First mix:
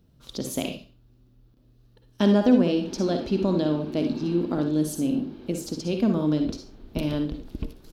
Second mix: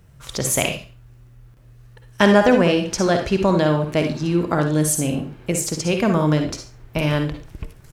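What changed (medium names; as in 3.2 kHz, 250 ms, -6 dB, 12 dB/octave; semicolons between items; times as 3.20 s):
speech +9.5 dB; master: add graphic EQ 125/250/1000/2000/4000/8000 Hz +6/-12/+3/+10/-8/+9 dB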